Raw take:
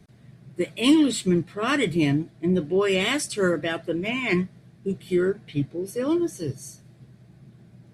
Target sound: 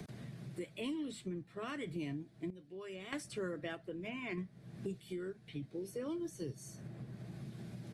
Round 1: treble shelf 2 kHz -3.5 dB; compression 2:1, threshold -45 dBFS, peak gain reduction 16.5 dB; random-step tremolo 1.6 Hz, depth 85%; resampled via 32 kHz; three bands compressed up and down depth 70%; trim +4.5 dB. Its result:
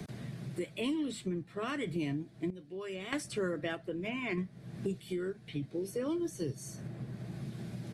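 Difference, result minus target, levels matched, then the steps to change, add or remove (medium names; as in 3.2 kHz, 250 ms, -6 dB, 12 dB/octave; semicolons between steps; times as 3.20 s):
compression: peak gain reduction -6 dB
change: compression 2:1, threshold -57 dBFS, peak gain reduction 22.5 dB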